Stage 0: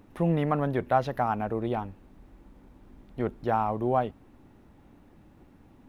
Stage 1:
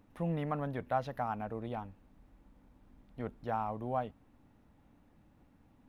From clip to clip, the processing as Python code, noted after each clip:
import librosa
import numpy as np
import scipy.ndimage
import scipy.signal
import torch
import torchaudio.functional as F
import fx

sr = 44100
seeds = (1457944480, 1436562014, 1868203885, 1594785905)

y = fx.peak_eq(x, sr, hz=370.0, db=-9.0, octaves=0.25)
y = y * 10.0 ** (-8.5 / 20.0)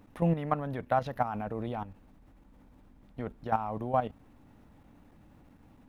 y = fx.level_steps(x, sr, step_db=11)
y = y * 10.0 ** (9.0 / 20.0)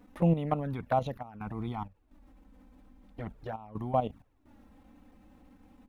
y = fx.env_flanger(x, sr, rest_ms=4.3, full_db=-26.0)
y = fx.step_gate(y, sr, bpm=64, pattern='xxxxx.xx.x', floor_db=-12.0, edge_ms=4.5)
y = y * 10.0 ** (2.5 / 20.0)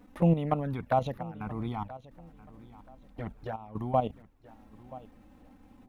y = fx.echo_feedback(x, sr, ms=979, feedback_pct=27, wet_db=-18.5)
y = y * 10.0 ** (1.5 / 20.0)